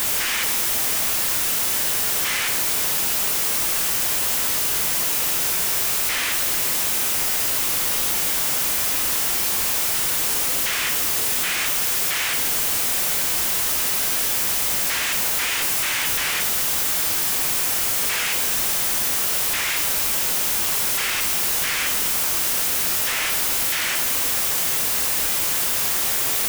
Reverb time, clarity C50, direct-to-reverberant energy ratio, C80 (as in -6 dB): 0.90 s, 8.5 dB, 5.5 dB, 11.0 dB